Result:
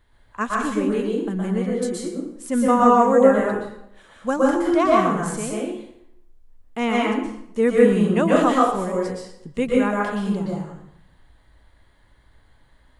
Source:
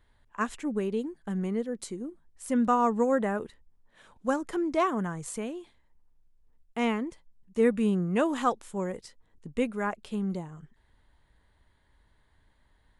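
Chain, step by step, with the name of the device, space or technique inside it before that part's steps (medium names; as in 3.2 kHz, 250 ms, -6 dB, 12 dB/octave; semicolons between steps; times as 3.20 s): bathroom (reverberation RT60 0.75 s, pre-delay 113 ms, DRR -4 dB); trim +4 dB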